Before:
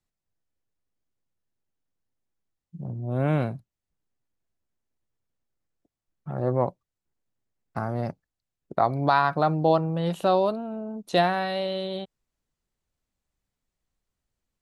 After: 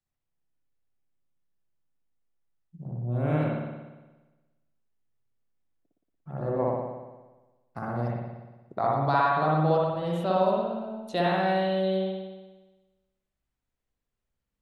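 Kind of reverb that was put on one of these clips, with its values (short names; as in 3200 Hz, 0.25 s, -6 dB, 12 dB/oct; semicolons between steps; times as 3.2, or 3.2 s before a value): spring tank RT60 1.2 s, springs 58 ms, chirp 65 ms, DRR -4.5 dB; gain -7.5 dB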